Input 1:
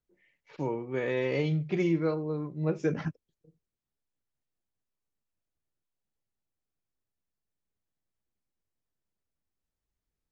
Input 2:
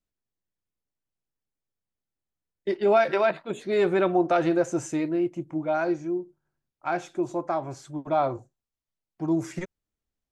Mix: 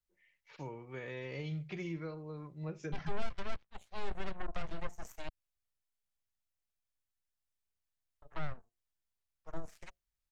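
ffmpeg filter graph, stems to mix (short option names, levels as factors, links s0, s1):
-filter_complex "[0:a]volume=0.891[s0];[1:a]bandreject=f=50:t=h:w=6,bandreject=f=100:t=h:w=6,bandreject=f=150:t=h:w=6,bandreject=f=200:t=h:w=6,bandreject=f=250:t=h:w=6,bandreject=f=300:t=h:w=6,bandreject=f=350:t=h:w=6,aeval=exprs='0.316*(cos(1*acos(clip(val(0)/0.316,-1,1)))-cos(1*PI/2))+0.0282*(cos(3*acos(clip(val(0)/0.316,-1,1)))-cos(3*PI/2))+0.1*(cos(4*acos(clip(val(0)/0.316,-1,1)))-cos(4*PI/2))+0.0316*(cos(7*acos(clip(val(0)/0.316,-1,1)))-cos(7*PI/2))+0.0158*(cos(8*acos(clip(val(0)/0.316,-1,1)))-cos(8*PI/2))':c=same,adelay=250,volume=0.501,asplit=3[s1][s2][s3];[s1]atrim=end=5.29,asetpts=PTS-STARTPTS,afade=t=out:st=5.286:d=0.004:c=hsin[s4];[s2]atrim=start=5.29:end=8.22,asetpts=PTS-STARTPTS,volume=0[s5];[s3]atrim=start=8.22,asetpts=PTS-STARTPTS,afade=t=in:d=0.004:c=hsin[s6];[s4][s5][s6]concat=n=3:v=0:a=1[s7];[s0][s7]amix=inputs=2:normalize=0,acrossover=split=410[s8][s9];[s9]acompressor=threshold=0.01:ratio=6[s10];[s8][s10]amix=inputs=2:normalize=0,equalizer=f=280:t=o:w=2.5:g=-13.5"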